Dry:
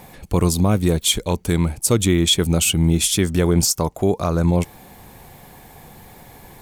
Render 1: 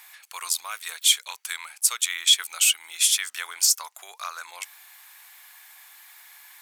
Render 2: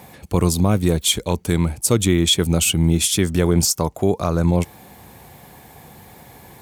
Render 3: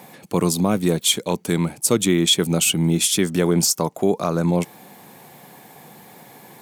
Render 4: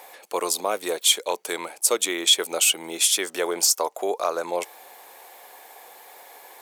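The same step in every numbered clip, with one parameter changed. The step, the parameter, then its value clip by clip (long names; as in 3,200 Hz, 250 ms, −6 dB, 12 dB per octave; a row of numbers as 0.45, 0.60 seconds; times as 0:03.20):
high-pass filter, corner frequency: 1,300, 55, 150, 470 Hertz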